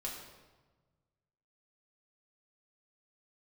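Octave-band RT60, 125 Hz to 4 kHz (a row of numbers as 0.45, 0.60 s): 2.1, 1.6, 1.4, 1.2, 1.0, 0.90 s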